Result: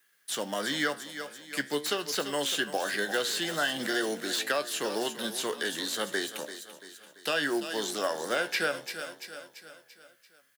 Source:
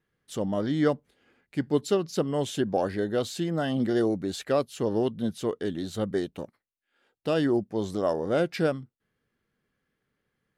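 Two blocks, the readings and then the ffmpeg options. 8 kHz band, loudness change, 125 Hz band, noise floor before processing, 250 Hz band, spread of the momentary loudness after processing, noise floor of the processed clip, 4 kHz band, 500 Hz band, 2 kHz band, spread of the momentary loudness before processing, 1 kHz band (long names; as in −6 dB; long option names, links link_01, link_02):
+9.0 dB, −2.5 dB, −16.5 dB, −82 dBFS, −9.0 dB, 12 LU, −65 dBFS, +9.0 dB, −5.5 dB, +9.5 dB, 9 LU, +0.5 dB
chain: -filter_complex "[0:a]acrossover=split=250|1100|5500[link_01][link_02][link_03][link_04];[link_04]aeval=exprs='(mod(56.2*val(0)+1,2)-1)/56.2':channel_layout=same[link_05];[link_01][link_02][link_03][link_05]amix=inputs=4:normalize=0,aderivative,asplit=2[link_06][link_07];[link_07]adelay=14,volume=-12dB[link_08];[link_06][link_08]amix=inputs=2:normalize=0,aecho=1:1:339|678|1017|1356|1695:0.188|0.0961|0.049|0.025|0.0127,apsyclip=31.5dB,acrusher=bits=4:mode=log:mix=0:aa=0.000001,acrossover=split=3500[link_09][link_10];[link_10]acompressor=threshold=-21dB:ratio=4:attack=1:release=60[link_11];[link_09][link_11]amix=inputs=2:normalize=0,highpass=frequency=130:width=0.5412,highpass=frequency=130:width=1.3066,acompressor=threshold=-14dB:ratio=6,equalizer=frequency=1600:width=3.7:gain=6.5,flanger=delay=9.8:depth=8.5:regen=79:speed=0.43:shape=triangular,volume=-7.5dB"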